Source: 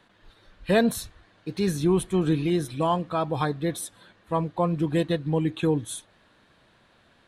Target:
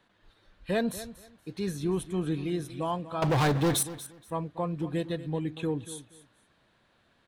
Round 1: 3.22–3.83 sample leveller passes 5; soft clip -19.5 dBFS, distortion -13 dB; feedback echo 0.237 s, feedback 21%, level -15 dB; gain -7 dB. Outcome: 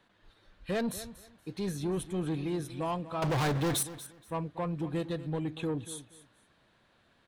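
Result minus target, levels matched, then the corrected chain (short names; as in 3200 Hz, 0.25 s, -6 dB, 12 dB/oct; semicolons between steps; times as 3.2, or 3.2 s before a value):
soft clip: distortion +19 dB
3.22–3.83 sample leveller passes 5; soft clip -7.5 dBFS, distortion -32 dB; feedback echo 0.237 s, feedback 21%, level -15 dB; gain -7 dB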